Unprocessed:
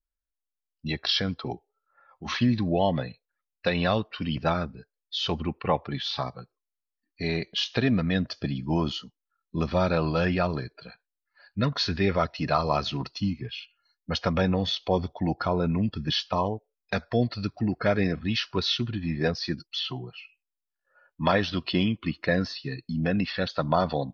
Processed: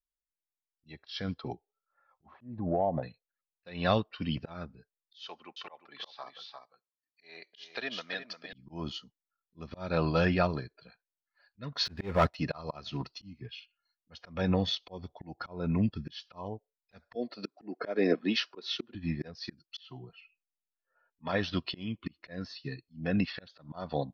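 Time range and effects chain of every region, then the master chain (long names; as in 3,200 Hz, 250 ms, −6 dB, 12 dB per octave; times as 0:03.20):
0:02.26–0:03.03: low-pass with resonance 740 Hz, resonance Q 2.7 + downward compressor 3 to 1, threshold −24 dBFS
0:05.21–0:08.53: high-pass filter 650 Hz + single-tap delay 352 ms −7.5 dB
0:11.85–0:12.35: high-shelf EQ 2,300 Hz −8 dB + leveller curve on the samples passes 2
0:17.15–0:18.95: high-pass filter 230 Hz 24 dB per octave + parametric band 440 Hz +8.5 dB 2 octaves
0:20.09–0:21.28: high-frequency loss of the air 180 metres + comb filter 4.4 ms, depth 87%
whole clip: volume swells 268 ms; expander for the loud parts 1.5 to 1, over −43 dBFS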